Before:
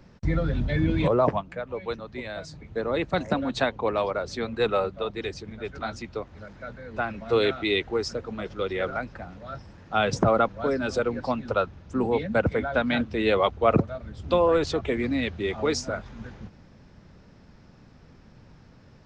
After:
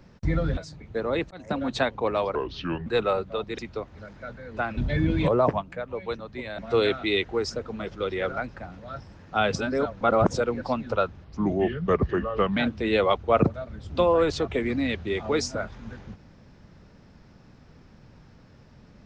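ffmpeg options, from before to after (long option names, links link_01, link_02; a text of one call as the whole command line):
ffmpeg -i in.wav -filter_complex "[0:a]asplit=12[link_01][link_02][link_03][link_04][link_05][link_06][link_07][link_08][link_09][link_10][link_11][link_12];[link_01]atrim=end=0.572[link_13];[link_02]atrim=start=2.378:end=3.12,asetpts=PTS-STARTPTS,afade=type=out:start_time=0.738:duration=0.004:curve=hsin[link_14];[link_03]atrim=start=3.12:end=4.164,asetpts=PTS-STARTPTS,afade=type=in:duration=0.32[link_15];[link_04]atrim=start=4.16:end=4.53,asetpts=PTS-STARTPTS,asetrate=31752,aresample=44100,atrim=end_sample=22662,asetpts=PTS-STARTPTS[link_16];[link_05]atrim=start=4.526:end=5.252[link_17];[link_06]atrim=start=5.978:end=7.172[link_18];[link_07]atrim=start=0.568:end=2.382[link_19];[link_08]atrim=start=7.168:end=10.142[link_20];[link_09]atrim=start=10.138:end=10.942,asetpts=PTS-STARTPTS,areverse[link_21];[link_10]atrim=start=10.938:end=11.834[link_22];[link_11]atrim=start=11.83:end=12.9,asetpts=PTS-STARTPTS,asetrate=35721,aresample=44100[link_23];[link_12]atrim=start=12.896[link_24];[link_14][link_15]concat=n=2:v=0:a=1[link_25];[link_13][link_25]acrossfade=duration=0.004:curve1=hsin:curve2=hsin[link_26];[link_26][link_16]acrossfade=duration=0.004:curve1=hsin:curve2=hsin[link_27];[link_27][link_17]acrossfade=duration=0.004:curve1=hsin:curve2=hsin[link_28];[link_28][link_18]acrossfade=duration=0.004:curve1=hsin:curve2=hsin[link_29];[link_29][link_19]acrossfade=duration=0.004:curve1=hsin:curve2=hsin[link_30];[link_30][link_20]acrossfade=duration=0.004:curve1=hsin:curve2=hsin[link_31];[link_31][link_21]acrossfade=duration=0.004:curve1=hsin:curve2=hsin[link_32];[link_32][link_22]acrossfade=duration=0.004:curve1=hsin:curve2=hsin[link_33];[link_33][link_23]acrossfade=duration=0.004:curve1=hsin:curve2=hsin[link_34];[link_34][link_24]acrossfade=duration=0.004:curve1=hsin:curve2=hsin" out.wav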